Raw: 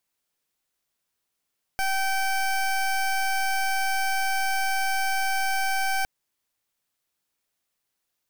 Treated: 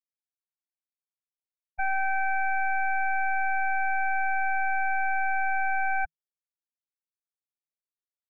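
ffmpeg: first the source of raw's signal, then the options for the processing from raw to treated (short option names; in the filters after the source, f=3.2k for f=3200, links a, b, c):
-f lavfi -i "aevalsrc='0.0596*(2*lt(mod(773*t,1),0.21)-1)':d=4.26:s=44100"
-af "afftfilt=real='re*gte(hypot(re,im),0.141)':imag='im*gte(hypot(re,im),0.141)':win_size=1024:overlap=0.75,equalizer=f=160:t=o:w=0.22:g=6.5"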